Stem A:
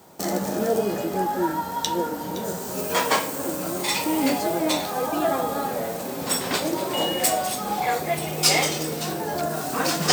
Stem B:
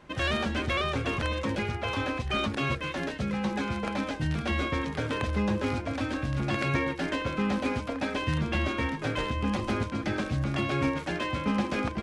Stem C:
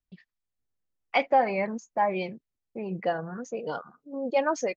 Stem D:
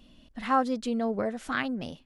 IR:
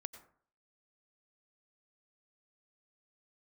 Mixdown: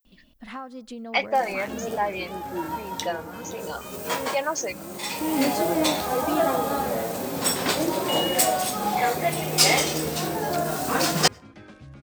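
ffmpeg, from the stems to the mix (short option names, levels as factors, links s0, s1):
-filter_complex "[0:a]adelay=1150,volume=1,asplit=2[s0][s1];[s1]volume=0.158[s2];[1:a]adelay=1500,volume=0.126,asplit=2[s3][s4];[s4]volume=0.447[s5];[2:a]aemphasis=mode=production:type=riaa,volume=1,asplit=2[s6][s7];[3:a]acompressor=threshold=0.0282:ratio=5,adelay=50,volume=0.596,asplit=2[s8][s9];[s9]volume=0.224[s10];[s7]apad=whole_len=497373[s11];[s0][s11]sidechaincompress=threshold=0.00708:ratio=5:attack=8.1:release=608[s12];[4:a]atrim=start_sample=2205[s13];[s2][s5][s10]amix=inputs=3:normalize=0[s14];[s14][s13]afir=irnorm=-1:irlink=0[s15];[s12][s3][s6][s8][s15]amix=inputs=5:normalize=0"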